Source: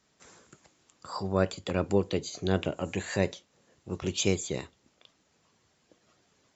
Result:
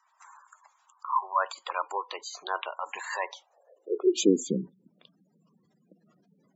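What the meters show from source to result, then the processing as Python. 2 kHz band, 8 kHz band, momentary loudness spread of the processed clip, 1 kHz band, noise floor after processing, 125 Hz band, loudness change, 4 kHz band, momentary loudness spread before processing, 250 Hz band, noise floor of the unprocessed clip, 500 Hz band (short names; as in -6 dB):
+1.5 dB, n/a, 14 LU, +9.0 dB, -70 dBFS, -11.0 dB, +1.0 dB, -1.5 dB, 11 LU, +1.5 dB, -70 dBFS, -0.5 dB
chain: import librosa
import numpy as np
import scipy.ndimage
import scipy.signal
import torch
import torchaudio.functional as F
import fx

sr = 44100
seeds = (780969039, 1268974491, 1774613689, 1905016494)

y = fx.filter_sweep_highpass(x, sr, from_hz=1000.0, to_hz=180.0, start_s=3.25, end_s=4.65, q=5.0)
y = fx.spec_gate(y, sr, threshold_db=-15, keep='strong')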